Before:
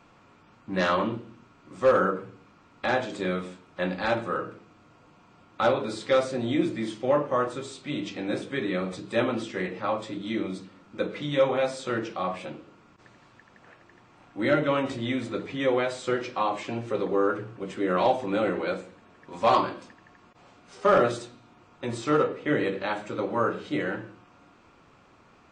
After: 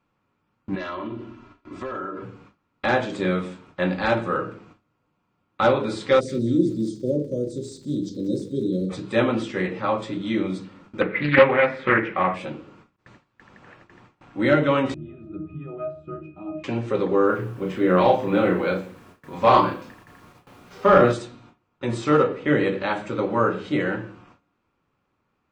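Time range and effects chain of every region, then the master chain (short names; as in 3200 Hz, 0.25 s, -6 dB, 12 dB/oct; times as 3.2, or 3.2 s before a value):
0.75–2.24 LPF 5800 Hz + comb 3 ms, depth 70% + compressor 5:1, threshold -34 dBFS
6.19–8.89 inverse Chebyshev band-stop 790–2700 Hz + crackle 90/s -47 dBFS + thin delay 0.189 s, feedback 34%, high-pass 2800 Hz, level -15 dB
11.01–12.34 transient shaper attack +4 dB, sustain -1 dB + synth low-pass 2000 Hz, resonance Q 5.2 + Doppler distortion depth 0.29 ms
14.94–16.64 low shelf 450 Hz +12 dB + octave resonator D#, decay 0.31 s
17.26–21.13 air absorption 79 m + doubler 33 ms -4.5 dB + requantised 10-bit, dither none
whole clip: gate with hold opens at -44 dBFS; tone controls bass +3 dB, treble -4 dB; notch 680 Hz, Q 12; gain +4.5 dB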